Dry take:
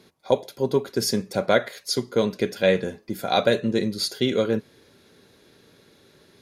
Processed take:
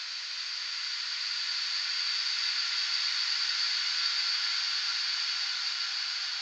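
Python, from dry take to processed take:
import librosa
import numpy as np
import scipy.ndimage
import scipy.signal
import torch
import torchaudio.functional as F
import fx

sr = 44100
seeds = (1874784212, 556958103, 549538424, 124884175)

p1 = fx.cvsd(x, sr, bps=32000)
p2 = scipy.signal.sosfilt(scipy.signal.cheby2(4, 60, 390.0, 'highpass', fs=sr, output='sos'), p1)
p3 = p2 + fx.echo_diffused(p2, sr, ms=945, feedback_pct=55, wet_db=-12, dry=0)
p4 = fx.paulstretch(p3, sr, seeds[0], factor=41.0, window_s=0.25, from_s=3.95)
y = F.gain(torch.from_numpy(p4), 1.5).numpy()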